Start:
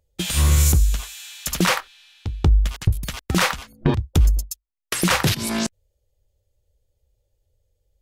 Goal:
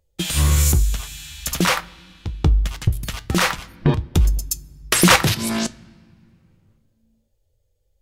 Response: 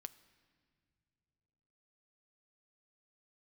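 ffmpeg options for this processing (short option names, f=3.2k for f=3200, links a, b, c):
-filter_complex "[0:a]asettb=1/sr,asplit=3[a][b][c];[a]atrim=end=4.454[d];[b]atrim=start=4.45:end=5.16,asetpts=PTS-STARTPTS,afade=t=in:d=0.004:c=qsin,afade=t=out:st=0.706:d=0.004:c=qsin,acontrast=86[e];[c]atrim=start=5.156[f];[d][e]acrossfade=d=0.004:c1=hsin:c2=qsin[g];[g][f]acrossfade=d=0.004:c1=qsin:c2=hsin,flanger=delay=5.4:depth=3.9:regen=78:speed=0.47:shape=triangular,asplit=2[h][i];[1:a]atrim=start_sample=2205[j];[i][j]afir=irnorm=-1:irlink=0,volume=4dB[k];[h][k]amix=inputs=2:normalize=0"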